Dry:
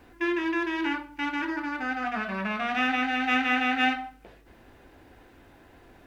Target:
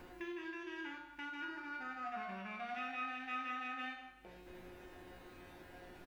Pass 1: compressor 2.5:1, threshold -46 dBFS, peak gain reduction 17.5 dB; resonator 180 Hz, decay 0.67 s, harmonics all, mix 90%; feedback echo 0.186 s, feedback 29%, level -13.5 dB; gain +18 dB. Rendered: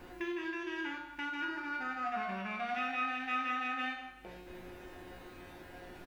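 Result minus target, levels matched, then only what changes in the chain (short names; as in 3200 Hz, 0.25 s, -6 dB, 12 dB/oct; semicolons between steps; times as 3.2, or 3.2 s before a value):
compressor: peak gain reduction -7 dB
change: compressor 2.5:1, threshold -57.5 dBFS, peak gain reduction 24 dB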